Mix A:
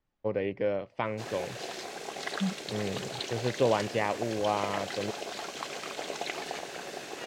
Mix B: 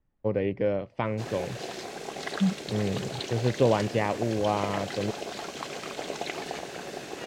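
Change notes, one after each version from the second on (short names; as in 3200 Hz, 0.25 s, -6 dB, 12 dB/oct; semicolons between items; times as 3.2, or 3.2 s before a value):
second voice: add air absorption 370 m; master: add low shelf 320 Hz +9 dB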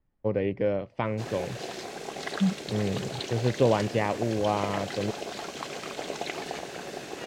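none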